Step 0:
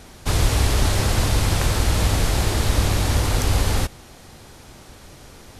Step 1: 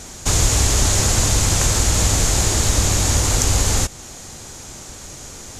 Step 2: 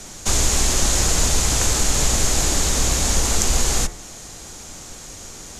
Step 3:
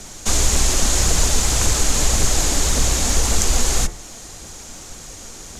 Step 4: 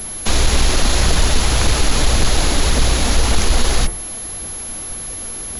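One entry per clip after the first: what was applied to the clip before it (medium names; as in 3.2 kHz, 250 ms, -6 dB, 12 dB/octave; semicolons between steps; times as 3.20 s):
in parallel at 0 dB: compression, threshold -26 dBFS, peak gain reduction 13 dB; on the sum: peaking EQ 6.9 kHz +15 dB 0.65 oct; trim -1.5 dB
de-hum 75.89 Hz, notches 31; frequency shift -42 Hz; trim -1 dB
phaser 1.8 Hz, delay 4.6 ms, feedback 30%
saturation -9.5 dBFS, distortion -18 dB; class-D stage that switches slowly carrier 11 kHz; trim +5.5 dB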